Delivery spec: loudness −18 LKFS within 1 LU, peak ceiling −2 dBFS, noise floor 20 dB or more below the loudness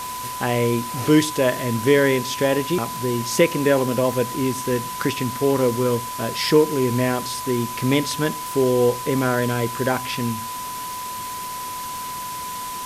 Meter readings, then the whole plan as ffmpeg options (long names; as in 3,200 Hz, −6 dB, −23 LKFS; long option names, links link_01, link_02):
interfering tone 1,000 Hz; level of the tone −29 dBFS; background noise floor −31 dBFS; target noise floor −42 dBFS; integrated loudness −21.5 LKFS; sample peak −4.0 dBFS; target loudness −18.0 LKFS
→ -af "bandreject=frequency=1000:width=30"
-af "afftdn=noise_reduction=11:noise_floor=-31"
-af "volume=3.5dB,alimiter=limit=-2dB:level=0:latency=1"